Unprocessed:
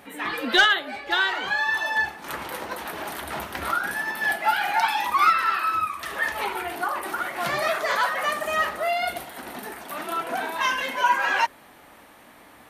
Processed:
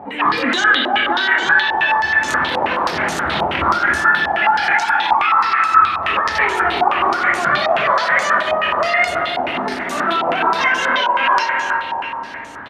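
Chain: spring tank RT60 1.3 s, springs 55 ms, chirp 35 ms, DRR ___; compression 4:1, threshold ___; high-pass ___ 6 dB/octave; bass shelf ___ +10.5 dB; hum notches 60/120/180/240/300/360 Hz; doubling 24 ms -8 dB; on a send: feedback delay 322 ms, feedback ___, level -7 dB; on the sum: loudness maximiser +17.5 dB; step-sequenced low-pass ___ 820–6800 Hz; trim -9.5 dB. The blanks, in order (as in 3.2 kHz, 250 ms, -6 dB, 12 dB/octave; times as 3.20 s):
6 dB, -26 dBFS, 130 Hz, 220 Hz, 47%, 9.4 Hz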